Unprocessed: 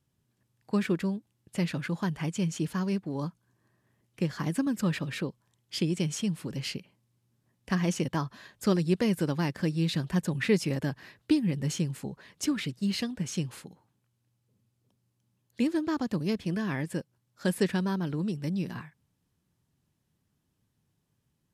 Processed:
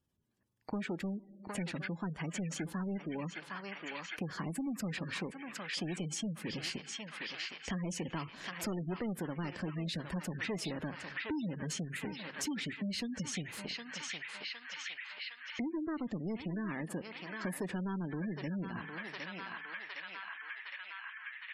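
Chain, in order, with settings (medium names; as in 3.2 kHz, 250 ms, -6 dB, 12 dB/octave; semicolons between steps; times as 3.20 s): waveshaping leveller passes 3; peaking EQ 130 Hz -13.5 dB 0.25 oct; band-passed feedback delay 761 ms, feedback 77%, band-pass 2.1 kHz, level -4 dB; on a send at -22 dB: reverberation RT60 1.4 s, pre-delay 33 ms; on the sum: spectral gate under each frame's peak -25 dB strong; compression 3:1, threshold -44 dBFS, peak gain reduction 19.5 dB; trim +1.5 dB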